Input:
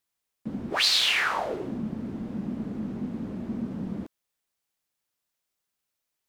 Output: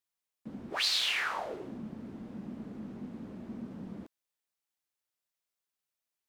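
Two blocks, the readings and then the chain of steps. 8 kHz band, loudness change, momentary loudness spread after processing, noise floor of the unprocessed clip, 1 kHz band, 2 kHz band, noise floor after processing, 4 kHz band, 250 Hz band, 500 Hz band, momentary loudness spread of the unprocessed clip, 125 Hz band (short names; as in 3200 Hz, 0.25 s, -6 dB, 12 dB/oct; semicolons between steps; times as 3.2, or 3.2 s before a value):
-7.0 dB, -7.0 dB, 18 LU, -83 dBFS, -7.5 dB, -7.0 dB, under -85 dBFS, -7.0 dB, -10.0 dB, -8.0 dB, 16 LU, -10.5 dB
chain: low shelf 300 Hz -4.5 dB; gain -7 dB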